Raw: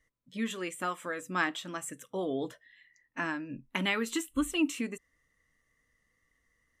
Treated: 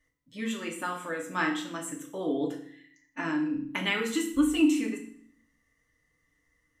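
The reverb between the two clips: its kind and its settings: FDN reverb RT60 0.57 s, low-frequency decay 1.5×, high-frequency decay 0.95×, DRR 0 dB; gain -1.5 dB

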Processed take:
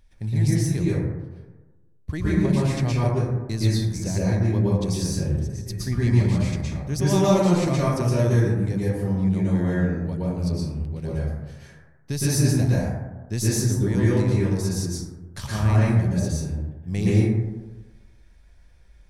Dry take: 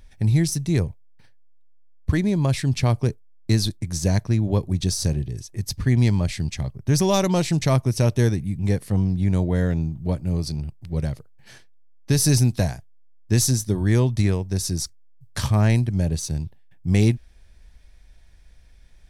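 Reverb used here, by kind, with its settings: plate-style reverb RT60 1.2 s, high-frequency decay 0.3×, pre-delay 0.105 s, DRR -8 dB; gain -9 dB

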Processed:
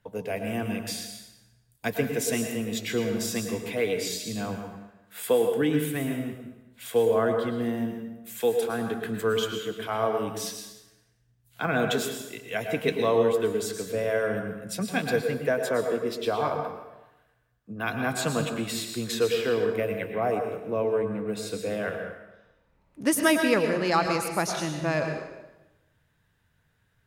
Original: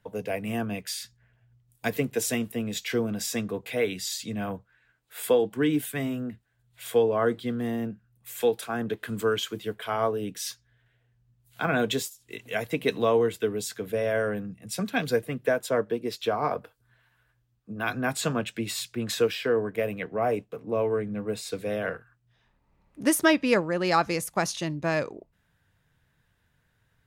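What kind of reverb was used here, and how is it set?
plate-style reverb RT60 1 s, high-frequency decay 0.85×, pre-delay 95 ms, DRR 4.5 dB; gain -1 dB

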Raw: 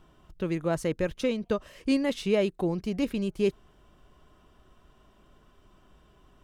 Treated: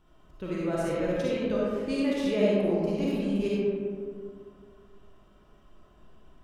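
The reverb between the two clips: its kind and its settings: digital reverb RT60 2.2 s, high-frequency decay 0.35×, pre-delay 15 ms, DRR -7 dB; gain -7.5 dB

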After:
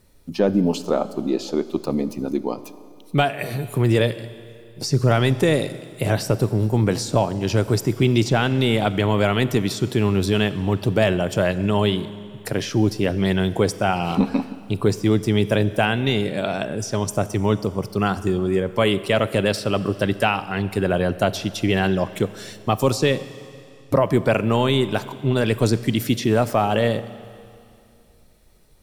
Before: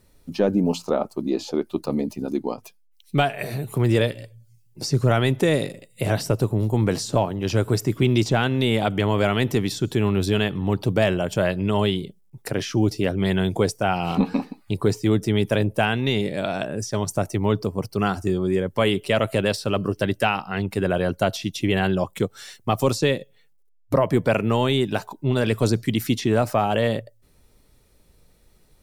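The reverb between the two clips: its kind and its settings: Schroeder reverb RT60 2.5 s, combs from 30 ms, DRR 14.5 dB; gain +1.5 dB

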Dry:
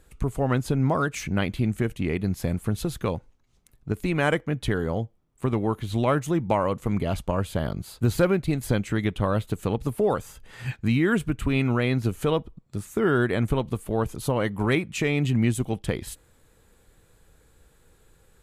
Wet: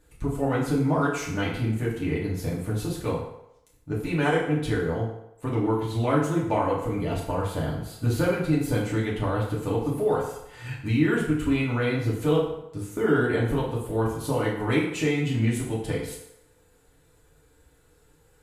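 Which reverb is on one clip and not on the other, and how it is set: FDN reverb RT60 0.83 s, low-frequency decay 0.7×, high-frequency decay 0.75×, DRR -6 dB; gain -7.5 dB

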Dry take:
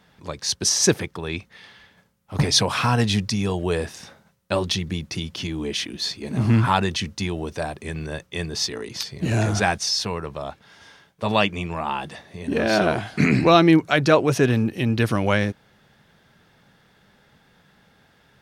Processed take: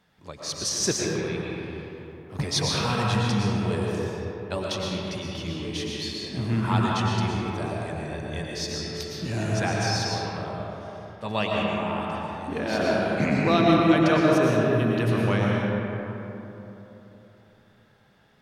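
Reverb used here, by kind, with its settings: digital reverb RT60 3.5 s, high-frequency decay 0.4×, pre-delay 75 ms, DRR -3.5 dB; gain -8.5 dB

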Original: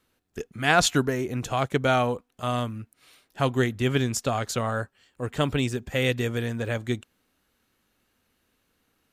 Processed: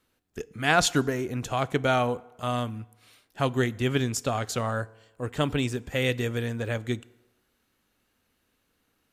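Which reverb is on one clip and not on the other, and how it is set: FDN reverb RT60 1.1 s, low-frequency decay 0.75×, high-frequency decay 0.65×, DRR 19 dB; gain -1.5 dB

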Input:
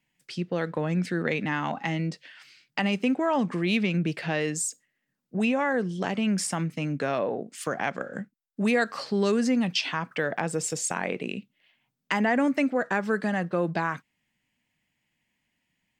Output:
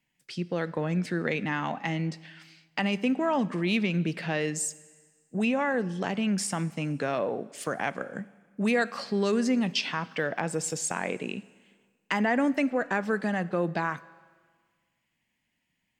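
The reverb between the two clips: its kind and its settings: Schroeder reverb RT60 1.6 s, combs from 31 ms, DRR 19 dB; gain -1.5 dB

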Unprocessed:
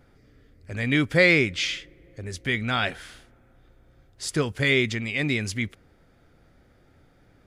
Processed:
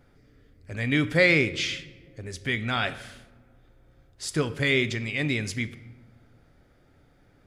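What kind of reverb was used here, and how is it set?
shoebox room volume 480 m³, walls mixed, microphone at 0.32 m; gain -2 dB

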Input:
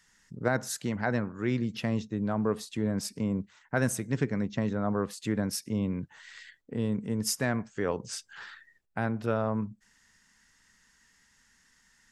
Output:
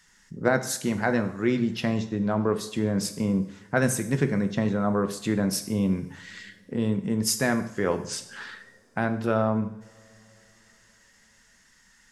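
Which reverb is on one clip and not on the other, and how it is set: two-slope reverb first 0.6 s, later 4.6 s, from -27 dB, DRR 7.5 dB; gain +4.5 dB

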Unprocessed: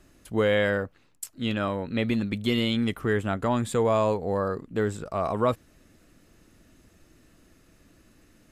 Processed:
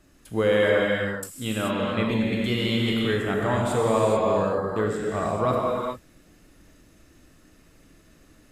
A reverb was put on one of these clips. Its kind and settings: non-linear reverb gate 0.46 s flat, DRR -3 dB; gain -1.5 dB

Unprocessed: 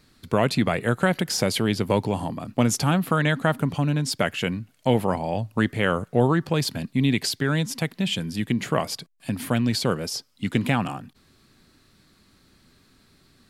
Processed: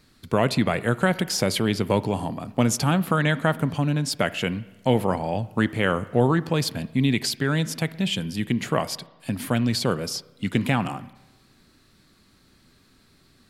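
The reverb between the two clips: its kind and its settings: spring tank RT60 1.1 s, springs 31/59 ms, chirp 80 ms, DRR 17 dB

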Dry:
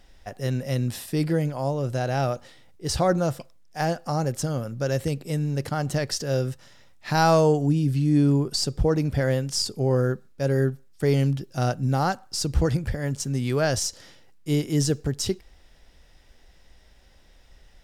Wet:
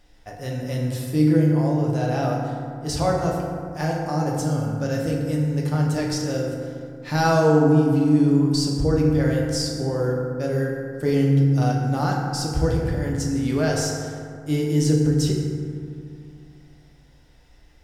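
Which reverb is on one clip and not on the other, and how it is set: FDN reverb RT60 2.3 s, low-frequency decay 1.3×, high-frequency decay 0.4×, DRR -2 dB; gain -3.5 dB

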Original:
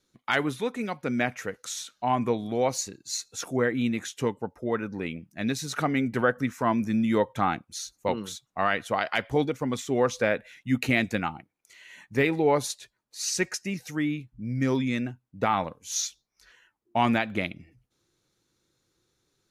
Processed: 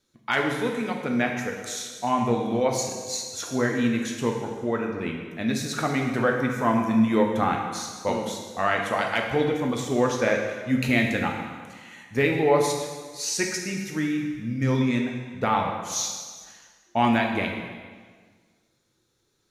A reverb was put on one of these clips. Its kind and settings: plate-style reverb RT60 1.6 s, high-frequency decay 0.9×, DRR 1 dB

